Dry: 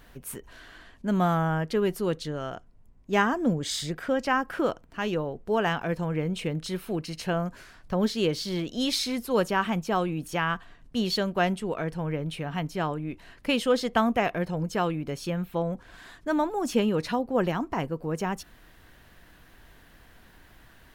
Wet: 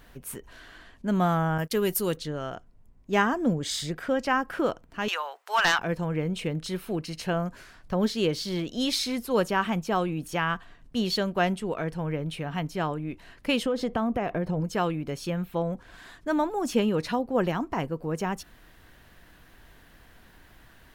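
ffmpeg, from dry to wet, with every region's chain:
-filter_complex "[0:a]asettb=1/sr,asplit=3[a][b][c];[a]atrim=end=1.584[d];[b]atrim=start=1.58:end=2.17,asetpts=PTS-STARTPTS,afade=t=in:d=0.004:c=qsin,afade=t=out:st=0.586:d=0.004:c=qsin,aemphasis=mode=production:type=75fm,agate=range=-22dB:threshold=-36dB:ratio=16:release=100:detection=peak[e];[c]atrim=start=2.166[f];[d][e]acrossfade=d=0.004:c1=hsin:c2=qsin[g];[g][f]acrossfade=d=0.004:c1=qsin:c2=hsin,asettb=1/sr,asplit=3[h][i][j];[h]atrim=end=5.084[k];[i]atrim=start=5.08:end=5.79,asetpts=PTS-STARTPTS,afade=t=in:d=0.004:c=qsin,afade=t=out:st=0.706:d=0.004:c=qsin,highpass=f=970:w=0.5412,highpass=f=970:w=1.3066,aeval=exprs='0.168*sin(PI/2*2.51*val(0)/0.168)':c=same[l];[j]atrim=start=5.786[m];[k][l]acrossfade=d=0.004:c1=hsin:c2=qsin[n];[n][m]acrossfade=d=0.004:c1=qsin:c2=hsin,asettb=1/sr,asplit=3[o][p][q];[o]atrim=end=13.634[r];[p]atrim=start=13.63:end=14.61,asetpts=PTS-STARTPTS,afade=t=in:d=0.004:c=qsin,afade=t=out:st=0.976:d=0.004:c=qsin,tiltshelf=f=1.5k:g=5.5,acompressor=threshold=-23dB:ratio=5:attack=3.2:release=140:knee=1:detection=peak[s];[q]atrim=start=14.606[t];[r][s]acrossfade=d=0.004:c1=hsin:c2=qsin[u];[u][t]acrossfade=d=0.004:c1=qsin:c2=hsin"

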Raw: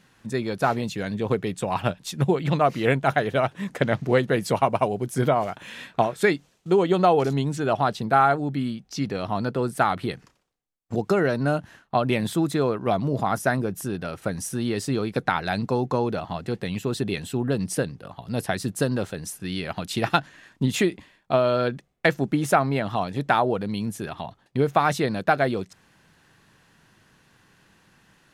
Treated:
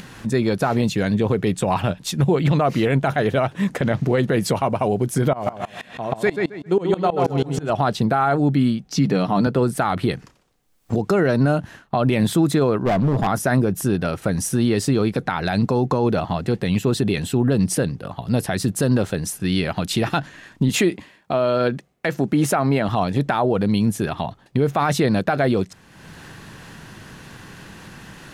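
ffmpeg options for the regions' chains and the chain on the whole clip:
-filter_complex "[0:a]asettb=1/sr,asplit=3[a][b][c];[a]atrim=end=5.334[d];[b]atrim=start=5.33:end=7.7,asetpts=PTS-STARTPTS,afade=t=in:d=0.004:c=qsin,afade=t=out:st=2.366:d=0.004:c=qsin,asplit=2[e][f];[f]adelay=134,lowpass=f=4.9k:p=1,volume=-5dB,asplit=2[g][h];[h]adelay=134,lowpass=f=4.9k:p=1,volume=0.38,asplit=2[i][j];[j]adelay=134,lowpass=f=4.9k:p=1,volume=0.38,asplit=2[k][l];[l]adelay=134,lowpass=f=4.9k:p=1,volume=0.38,asplit=2[m][n];[n]adelay=134,lowpass=f=4.9k:p=1,volume=0.38[o];[e][g][i][k][m][o]amix=inputs=6:normalize=0,atrim=end_sample=104517,aeval=exprs='val(0)*pow(10,-23*if(lt(mod(-6.2*n/s,1),2*abs(-6.2)/1000),1-mod(-6.2*n/s,1)/(2*abs(-6.2)/1000),(mod(-6.2*n/s,1)-2*abs(-6.2)/1000)/(1-2*abs(-6.2)/1000))/20)':c=same[p];[c]atrim=start=7.696[q];[d][p]acrossfade=d=0.004:c1=hsin:c2=qsin[r];[r][q]acrossfade=d=0.004:c1=qsin:c2=hsin,asettb=1/sr,asplit=3[s][t][u];[s]atrim=end=8.874[v];[t]atrim=start=8.87:end=9.47,asetpts=PTS-STARTPTS,afade=t=in:d=0.004:c=qsin,afade=t=out:st=0.596:d=0.004:c=qsin,lowshelf=f=120:t=q:w=3:g=-8.5,aecho=1:1:6.8:0.33,atrim=end_sample=26460[w];[u]atrim=start=9.466[x];[v][w]acrossfade=d=0.004:c1=hsin:c2=qsin[y];[y][x]acrossfade=d=0.004:c1=qsin:c2=hsin,asettb=1/sr,asplit=3[z][aa][ab];[z]atrim=end=12.834[ac];[aa]atrim=start=12.83:end=13.27,asetpts=PTS-STARTPTS,afade=t=in:d=0.004:c=qsin,afade=t=out:st=0.436:d=0.004:c=qsin,highshelf=f=2.9k:g=-10.5,volume=24dB,asoftclip=hard,volume=-24dB[ad];[ab]atrim=start=13.266[ae];[ac][ad]acrossfade=d=0.004:c1=hsin:c2=qsin[af];[af][ae]acrossfade=d=0.004:c1=qsin:c2=hsin,asettb=1/sr,asplit=3[ag][ah][ai];[ag]atrim=end=20.694[aj];[ah]atrim=start=20.69:end=22.89,asetpts=PTS-STARTPTS,afade=t=in:d=0.004:c=qsin,afade=t=out:st=2.196:d=0.004:c=qsin,highpass=f=150:p=1,bandreject=f=3.5k:w=26[ak];[ai]atrim=start=22.886[al];[aj][ak]acrossfade=d=0.004:c1=hsin:c2=qsin[am];[am][al]acrossfade=d=0.004:c1=qsin:c2=hsin,lowshelf=f=450:g=4,acompressor=mode=upward:threshold=-36dB:ratio=2.5,alimiter=level_in=15dB:limit=-1dB:release=50:level=0:latency=1,volume=-8.5dB"

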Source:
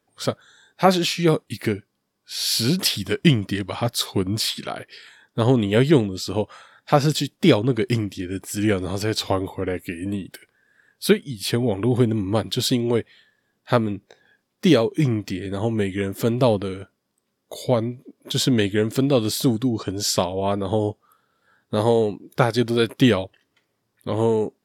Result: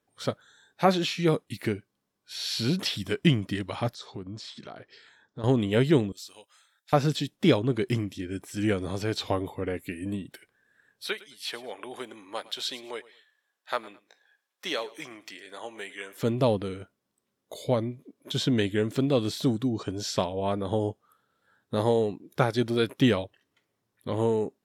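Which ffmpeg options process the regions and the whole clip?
-filter_complex "[0:a]asettb=1/sr,asplit=3[a][b][c];[a]atrim=end=3.944[d];[b]atrim=start=3.94:end=5.44,asetpts=PTS-STARTPTS,afade=t=in:d=0.004:c=qsin,afade=t=out:st=1.496:d=0.004:c=qsin,equalizer=f=2.6k:w=1.2:g=-6.5,acompressor=threshold=-37dB:ratio=2:attack=3.2:release=140:knee=1:detection=peak,lowpass=f=6.5k:w=0.5412,lowpass=f=6.5k:w=1.3066[e];[c]atrim=start=5.436[f];[d][e]acrossfade=d=0.004:c1=hsin:c2=qsin[g];[g][f]acrossfade=d=0.004:c1=qsin:c2=hsin,asettb=1/sr,asplit=3[h][i][j];[h]atrim=end=6.124[k];[i]atrim=start=6.12:end=6.93,asetpts=PTS-STARTPTS,afade=t=in:d=0.004:c=qsin,afade=t=out:st=0.806:d=0.004:c=qsin,deesser=0.35,aderivative[l];[j]atrim=start=6.926[m];[k][l]acrossfade=d=0.004:c1=hsin:c2=qsin[n];[n][m]acrossfade=d=0.004:c1=qsin:c2=hsin,asettb=1/sr,asplit=3[o][p][q];[o]atrim=end=11.074[r];[p]atrim=start=11.07:end=16.23,asetpts=PTS-STARTPTS,afade=t=in:d=0.004:c=qsin,afade=t=out:st=5.156:d=0.004:c=qsin,highpass=820,aecho=1:1:108|216:0.1|0.027,atrim=end_sample=227556[s];[q]atrim=start=16.226[t];[r][s]acrossfade=d=0.004:c1=hsin:c2=qsin[u];[u][t]acrossfade=d=0.004:c1=qsin:c2=hsin,bandreject=f=4.8k:w=13,acrossover=split=5800[v][w];[w]acompressor=threshold=-41dB:ratio=4:attack=1:release=60[x];[v][x]amix=inputs=2:normalize=0,volume=-5.5dB"

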